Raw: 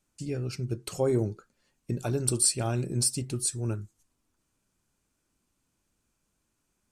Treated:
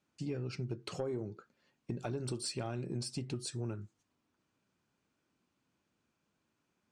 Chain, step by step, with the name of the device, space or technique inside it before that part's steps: AM radio (band-pass 120–4100 Hz; compression 10:1, threshold -33 dBFS, peak gain reduction 12 dB; saturation -25 dBFS, distortion -23 dB)

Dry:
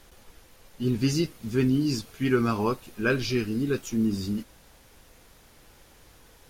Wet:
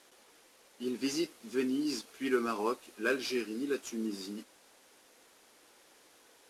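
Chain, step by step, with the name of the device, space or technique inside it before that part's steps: early wireless headset (high-pass 270 Hz 24 dB/octave; CVSD coder 64 kbps); trim -5 dB

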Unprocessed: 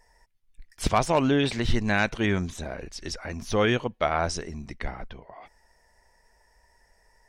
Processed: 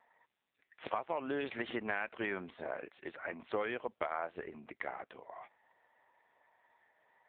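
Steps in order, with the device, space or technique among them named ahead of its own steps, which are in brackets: bass shelf 81 Hz -2 dB; 1.70–2.10 s: gate -31 dBFS, range -36 dB; voicemail (band-pass 430–2700 Hz; compression 12:1, threshold -31 dBFS, peak gain reduction 14.5 dB; AMR-NB 5.9 kbps 8 kHz)

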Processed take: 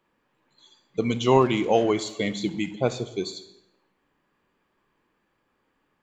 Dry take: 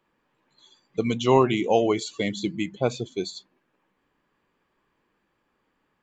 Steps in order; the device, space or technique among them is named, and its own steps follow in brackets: saturated reverb return (on a send at -9 dB: reverberation RT60 0.90 s, pre-delay 24 ms + saturation -25 dBFS, distortion -6 dB)

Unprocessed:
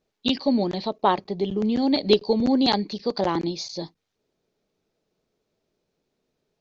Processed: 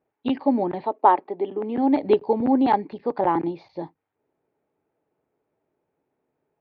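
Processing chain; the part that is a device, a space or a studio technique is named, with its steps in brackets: bass cabinet (cabinet simulation 82–2200 Hz, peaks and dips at 200 Hz -8 dB, 290 Hz +4 dB, 860 Hz +8 dB); 0.84–1.78 s: high-pass 240 Hz 24 dB/octave

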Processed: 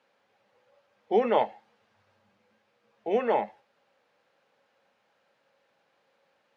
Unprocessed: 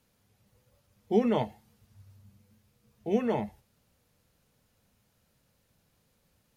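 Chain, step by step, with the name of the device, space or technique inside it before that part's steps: tin-can telephone (band-pass 510–2700 Hz; small resonant body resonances 550/810/1600 Hz, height 8 dB, ringing for 95 ms); trim +7 dB

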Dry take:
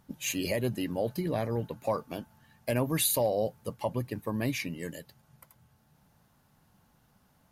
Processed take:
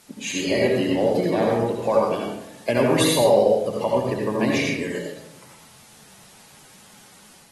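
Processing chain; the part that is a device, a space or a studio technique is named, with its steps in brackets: filmed off a television (band-pass 180–7300 Hz; peaking EQ 410 Hz +4.5 dB 0.2 oct; reverberation RT60 0.80 s, pre-delay 65 ms, DRR -2 dB; white noise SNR 26 dB; level rider gain up to 4 dB; trim +2.5 dB; AAC 32 kbps 48 kHz)

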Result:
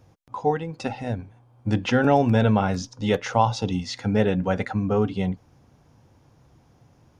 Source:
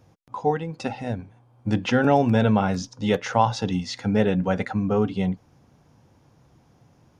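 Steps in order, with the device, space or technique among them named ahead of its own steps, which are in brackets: low shelf boost with a cut just above (bass shelf 110 Hz +4.5 dB; peaking EQ 180 Hz -3 dB 0.69 oct); 3.30–3.78 s: peaking EQ 1.7 kHz -15 dB 0.27 oct

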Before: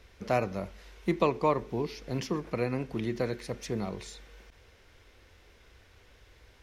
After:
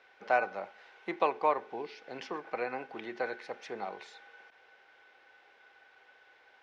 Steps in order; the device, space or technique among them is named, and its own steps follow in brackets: tin-can telephone (band-pass 560–3000 Hz; small resonant body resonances 800/1500 Hz, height 15 dB, ringing for 85 ms); 1.75–2.23 s: dynamic bell 1 kHz, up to -5 dB, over -52 dBFS, Q 1.1

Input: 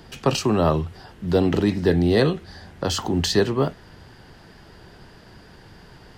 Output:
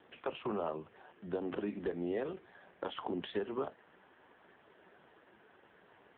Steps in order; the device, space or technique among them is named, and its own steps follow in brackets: dynamic bell 210 Hz, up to +5 dB, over -37 dBFS, Q 7.9; voicemail (band-pass 350–3000 Hz; compression 12:1, threshold -24 dBFS, peak gain reduction 9.5 dB; trim -7 dB; AMR-NB 5.15 kbps 8 kHz)

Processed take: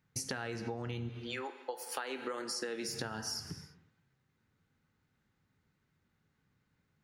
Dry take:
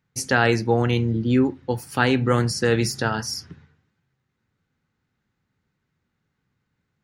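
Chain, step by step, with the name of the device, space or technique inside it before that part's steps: 1.08–2.88 s: high-pass 730 Hz -> 220 Hz 24 dB/octave; gated-style reverb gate 360 ms falling, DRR 11.5 dB; serial compression, peaks first (compression, threshold -27 dBFS, peak gain reduction 13 dB; compression 3:1, threshold -35 dBFS, peak gain reduction 8.5 dB); trim -2 dB

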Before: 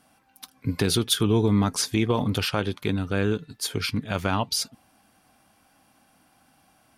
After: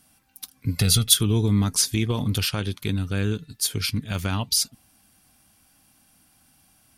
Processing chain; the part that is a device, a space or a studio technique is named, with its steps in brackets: 0.76–1.17 s: comb 1.5 ms, depth 85%; smiley-face EQ (bass shelf 93 Hz +7 dB; peaking EQ 710 Hz -8.5 dB 2.7 oct; treble shelf 5.7 kHz +8.5 dB); trim +1 dB

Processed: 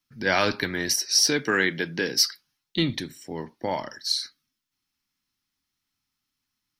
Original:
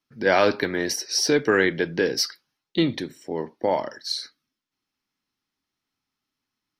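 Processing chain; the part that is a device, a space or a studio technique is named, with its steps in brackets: 0.95–2.24 s: high-pass 150 Hz 12 dB/octave; smiley-face EQ (bass shelf 100 Hz +6 dB; peaking EQ 490 Hz -8 dB 1.6 oct; treble shelf 5.1 kHz +7 dB)

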